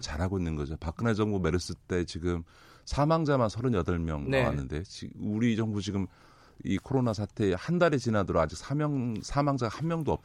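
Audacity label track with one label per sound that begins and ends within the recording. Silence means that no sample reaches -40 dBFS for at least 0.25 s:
2.870000	6.060000	sound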